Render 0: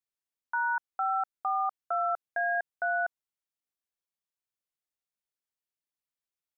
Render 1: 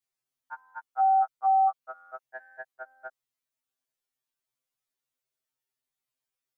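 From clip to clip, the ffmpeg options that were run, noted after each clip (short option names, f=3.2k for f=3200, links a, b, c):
-af "afftfilt=real='re*2.45*eq(mod(b,6),0)':imag='im*2.45*eq(mod(b,6),0)':win_size=2048:overlap=0.75,volume=5.5dB"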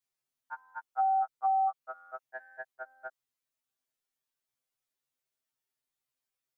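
-af "acompressor=threshold=-24dB:ratio=6,volume=-1dB"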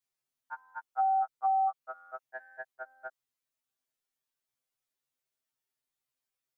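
-af anull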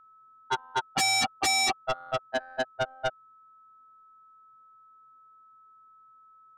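-af "adynamicsmooth=sensitivity=4:basefreq=660,aeval=exprs='0.0841*sin(PI/2*6.31*val(0)/0.0841)':c=same,aeval=exprs='val(0)+0.002*sin(2*PI*1300*n/s)':c=same"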